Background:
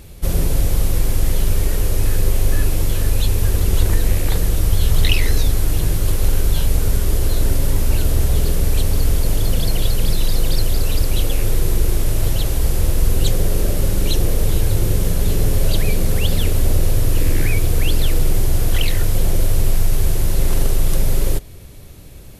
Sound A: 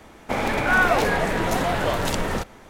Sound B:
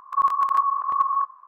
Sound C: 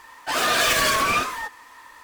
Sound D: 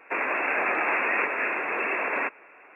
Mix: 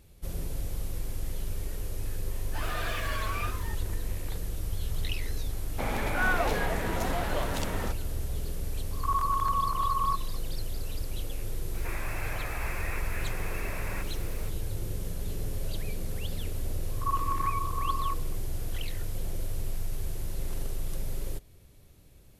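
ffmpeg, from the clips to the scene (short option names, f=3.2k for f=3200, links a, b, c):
-filter_complex "[2:a]asplit=2[a][b];[0:a]volume=-17dB[c];[3:a]acrossover=split=3400[d][e];[e]acompressor=threshold=-36dB:ratio=4:attack=1:release=60[f];[d][f]amix=inputs=2:normalize=0[g];[a]alimiter=limit=-17.5dB:level=0:latency=1:release=33[h];[4:a]aeval=exprs='val(0)+0.5*0.0335*sgn(val(0))':c=same[i];[g]atrim=end=2.03,asetpts=PTS-STARTPTS,volume=-14dB,afade=t=in:d=0.004:c=hsin,afade=t=out:st=2.026:d=0.004:c=hsin,adelay=2270[j];[1:a]atrim=end=2.69,asetpts=PTS-STARTPTS,volume=-9dB,afade=t=in:d=0.004:c=hsin,afade=t=out:st=2.686:d=0.004:c=hsin,adelay=242109S[k];[h]atrim=end=1.47,asetpts=PTS-STARTPTS,volume=-4.5dB,afade=t=in:d=0.004:c=hsin,afade=t=out:st=1.466:d=0.004:c=hsin,adelay=8910[l];[i]atrim=end=2.75,asetpts=PTS-STARTPTS,volume=-15.5dB,afade=t=in:d=0.004:c=hsin,afade=t=out:st=2.746:d=0.004:c=hsin,adelay=11740[m];[b]atrim=end=1.47,asetpts=PTS-STARTPTS,volume=-10.5dB,afade=t=in:d=0.004:c=hsin,afade=t=out:st=1.466:d=0.004:c=hsin,adelay=16890[n];[c][j][k][l][m][n]amix=inputs=6:normalize=0"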